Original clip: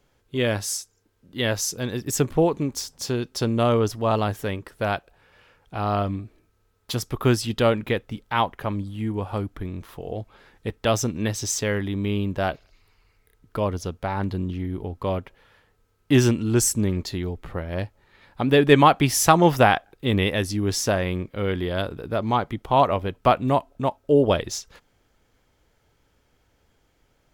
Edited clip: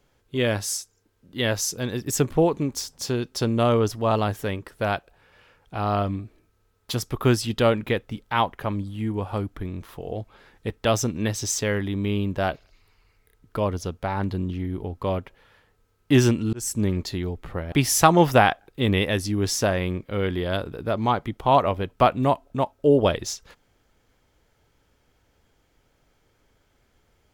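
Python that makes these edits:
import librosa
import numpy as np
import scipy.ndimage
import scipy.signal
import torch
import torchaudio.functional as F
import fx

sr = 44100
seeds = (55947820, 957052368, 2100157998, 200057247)

y = fx.edit(x, sr, fx.fade_in_span(start_s=16.53, length_s=0.31),
    fx.cut(start_s=17.72, length_s=1.25), tone=tone)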